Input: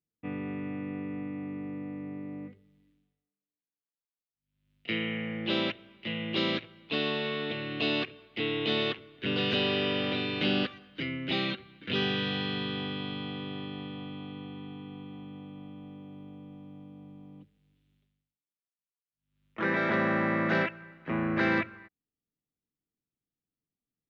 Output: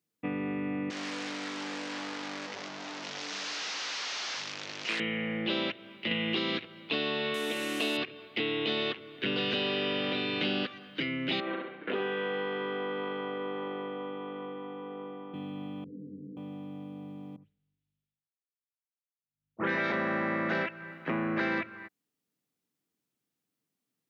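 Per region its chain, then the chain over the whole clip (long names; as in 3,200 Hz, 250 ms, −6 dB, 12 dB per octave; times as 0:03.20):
0:00.90–0:05.00: linear delta modulator 32 kbit/s, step −35.5 dBFS + high-pass filter 790 Hz 6 dB per octave + highs frequency-modulated by the lows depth 0.59 ms
0:06.11–0:06.65: notch filter 580 Hz, Q 5.7 + multiband upward and downward compressor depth 100%
0:07.34–0:07.97: linear delta modulator 64 kbit/s, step −37.5 dBFS + linear-phase brick-wall high-pass 160 Hz
0:11.40–0:15.34: transient designer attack +4 dB, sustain +8 dB + flat-topped band-pass 710 Hz, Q 0.64 + repeating echo 67 ms, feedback 43%, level −5 dB
0:15.84–0:16.37: Chebyshev low-pass filter 530 Hz, order 10 + micro pitch shift up and down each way 57 cents
0:17.36–0:19.92: all-pass dispersion highs, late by 90 ms, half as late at 2,400 Hz + multiband upward and downward expander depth 70%
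whole clip: Bessel high-pass filter 190 Hz, order 2; downward compressor 3 to 1, threshold −39 dBFS; level +8 dB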